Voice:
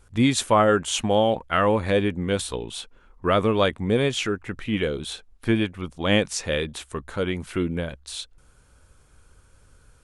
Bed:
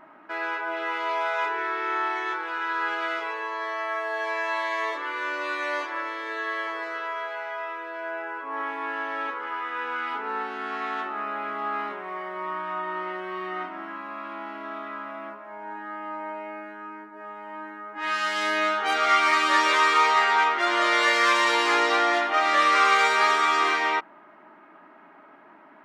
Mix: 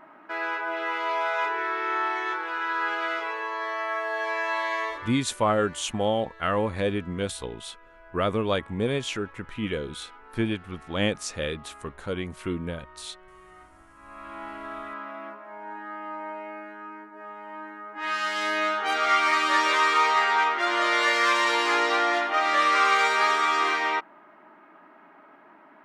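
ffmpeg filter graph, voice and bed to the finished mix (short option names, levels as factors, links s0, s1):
-filter_complex "[0:a]adelay=4900,volume=0.562[s0];[1:a]volume=7.08,afade=t=out:st=4.75:d=0.48:silence=0.11885,afade=t=in:st=13.95:d=0.5:silence=0.141254[s1];[s0][s1]amix=inputs=2:normalize=0"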